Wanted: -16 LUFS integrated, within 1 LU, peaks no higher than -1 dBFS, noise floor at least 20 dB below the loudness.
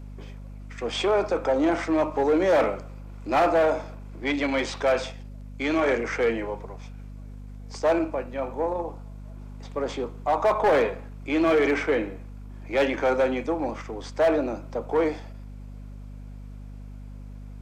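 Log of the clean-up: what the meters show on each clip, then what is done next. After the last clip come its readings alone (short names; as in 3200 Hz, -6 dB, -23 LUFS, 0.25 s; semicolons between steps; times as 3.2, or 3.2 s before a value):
clipped 1.1%; flat tops at -15.5 dBFS; hum 50 Hz; harmonics up to 250 Hz; hum level -37 dBFS; loudness -25.0 LUFS; peak -15.5 dBFS; loudness target -16.0 LUFS
-> clip repair -15.5 dBFS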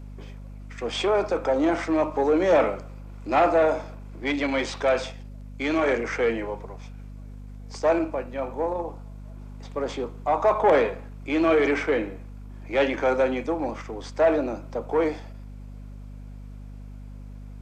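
clipped 0.0%; hum 50 Hz; harmonics up to 250 Hz; hum level -37 dBFS
-> notches 50/100/150/200/250 Hz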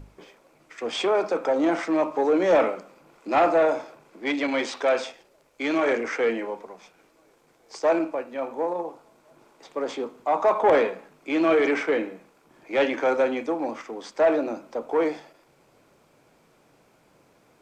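hum none; loudness -24.5 LUFS; peak -6.5 dBFS; loudness target -16.0 LUFS
-> gain +8.5 dB; limiter -1 dBFS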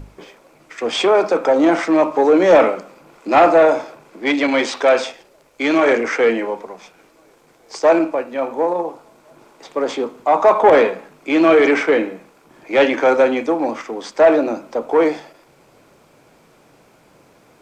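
loudness -16.0 LUFS; peak -1.0 dBFS; noise floor -52 dBFS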